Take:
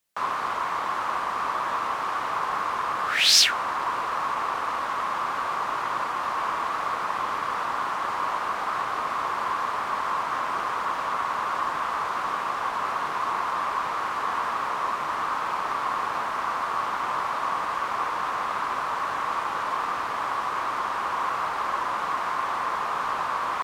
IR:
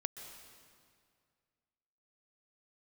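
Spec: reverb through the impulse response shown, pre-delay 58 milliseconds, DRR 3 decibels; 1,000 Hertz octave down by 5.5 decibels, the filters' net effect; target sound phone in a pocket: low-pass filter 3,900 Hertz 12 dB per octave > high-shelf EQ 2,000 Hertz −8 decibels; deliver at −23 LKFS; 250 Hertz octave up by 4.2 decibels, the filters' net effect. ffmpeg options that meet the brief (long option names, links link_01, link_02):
-filter_complex "[0:a]equalizer=frequency=250:width_type=o:gain=6,equalizer=frequency=1000:width_type=o:gain=-4.5,asplit=2[link_01][link_02];[1:a]atrim=start_sample=2205,adelay=58[link_03];[link_02][link_03]afir=irnorm=-1:irlink=0,volume=-2dB[link_04];[link_01][link_04]amix=inputs=2:normalize=0,lowpass=3900,highshelf=frequency=2000:gain=-8,volume=7.5dB"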